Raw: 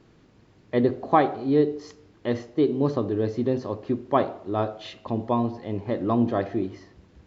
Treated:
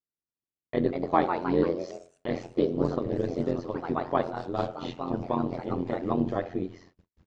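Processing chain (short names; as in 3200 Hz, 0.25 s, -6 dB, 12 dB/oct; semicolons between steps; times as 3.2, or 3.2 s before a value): de-hum 58.18 Hz, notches 3; gate -49 dBFS, range -44 dB; echoes that change speed 0.274 s, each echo +2 st, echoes 3, each echo -6 dB; AM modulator 87 Hz, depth 80%; gain -1 dB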